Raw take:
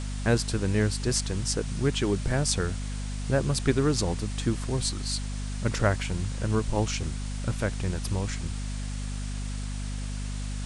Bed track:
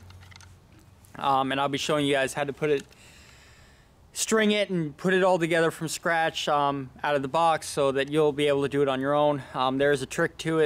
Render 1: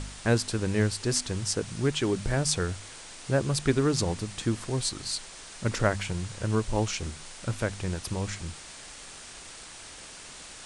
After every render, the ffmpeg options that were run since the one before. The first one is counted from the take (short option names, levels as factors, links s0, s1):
-af "bandreject=f=50:t=h:w=4,bandreject=f=100:t=h:w=4,bandreject=f=150:t=h:w=4,bandreject=f=200:t=h:w=4,bandreject=f=250:t=h:w=4"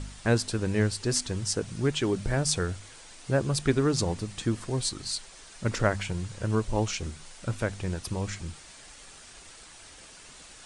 -af "afftdn=nr=6:nf=-45"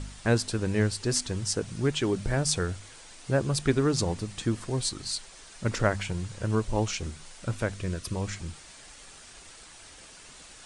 -filter_complex "[0:a]asettb=1/sr,asplit=3[s0][s1][s2];[s0]atrim=end=7.744[s3];[s1]atrim=start=7.74:end=8.15,asetpts=PTS-STARTPTS,afade=t=in:d=0.004:c=qsin,afade=t=out:st=0.406:d=0.004:c=qsin,asuperstop=centerf=820:order=8:qfactor=3.2[s4];[s2]atrim=start=8.146[s5];[s3][s4]acrossfade=d=0.004:c1=hsin:c2=qsin[s6];[s6][s5]acrossfade=d=0.004:c1=qsin:c2=hsin"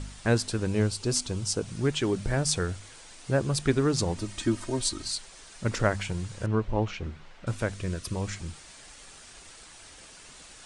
-filter_complex "[0:a]asettb=1/sr,asplit=3[s0][s1][s2];[s0]atrim=end=0.674[s3];[s1]atrim=start=0.67:end=1.66,asetpts=PTS-STARTPTS,afade=t=in:d=0.004:c=qsin,afade=t=out:st=0.986:d=0.004:c=qsin,equalizer=f=1800:w=4.5:g=-9.5[s4];[s2]atrim=start=1.656[s5];[s3][s4]acrossfade=d=0.004:c1=hsin:c2=qsin[s6];[s6][s5]acrossfade=d=0.004:c1=qsin:c2=hsin,asettb=1/sr,asplit=3[s7][s8][s9];[s7]atrim=end=4.174[s10];[s8]atrim=start=4.17:end=5.08,asetpts=PTS-STARTPTS,afade=t=in:d=0.004:c=qsin,afade=t=out:st=0.906:d=0.004:c=qsin,aecho=1:1:3.2:0.71,atrim=end_sample=40131[s11];[s9]atrim=start=5.076[s12];[s10][s11]acrossfade=d=0.004:c1=hsin:c2=qsin[s13];[s13][s12]acrossfade=d=0.004:c1=qsin:c2=hsin,asettb=1/sr,asplit=3[s14][s15][s16];[s14]atrim=end=6.464[s17];[s15]atrim=start=6.46:end=7.47,asetpts=PTS-STARTPTS,afade=t=in:d=0.004:c=qsin,afade=t=out:st=1.006:d=0.004:c=qsin,lowpass=2600[s18];[s16]atrim=start=7.466[s19];[s17][s18]acrossfade=d=0.004:c1=hsin:c2=qsin[s20];[s20][s19]acrossfade=d=0.004:c1=qsin:c2=hsin"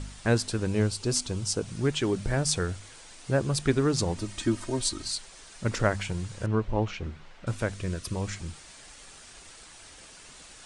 -af anull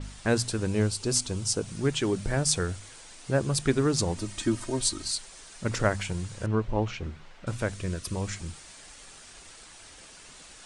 -af "bandreject=f=60:t=h:w=6,bandreject=f=120:t=h:w=6,adynamicequalizer=threshold=0.00631:dfrequency=6300:dqfactor=0.7:tfrequency=6300:tqfactor=0.7:attack=5:release=100:ratio=0.375:range=2:mode=boostabove:tftype=highshelf"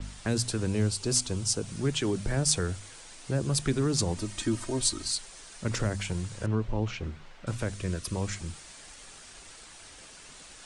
-filter_complex "[0:a]acrossover=split=500|3000[s0][s1][s2];[s1]acompressor=threshold=0.0282:ratio=6[s3];[s0][s3][s2]amix=inputs=3:normalize=0,acrossover=split=240|2600[s4][s5][s6];[s5]alimiter=level_in=1.12:limit=0.0631:level=0:latency=1:release=22,volume=0.891[s7];[s4][s7][s6]amix=inputs=3:normalize=0"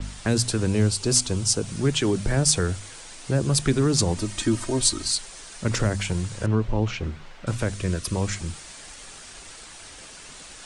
-af "volume=2,alimiter=limit=0.708:level=0:latency=1"